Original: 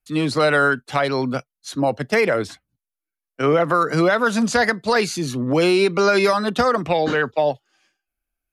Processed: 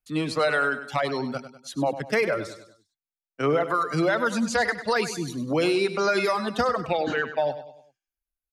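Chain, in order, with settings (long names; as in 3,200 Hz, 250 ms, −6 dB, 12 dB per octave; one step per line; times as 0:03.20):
reverb reduction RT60 1.5 s
repeating echo 99 ms, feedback 44%, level −12 dB
level −5 dB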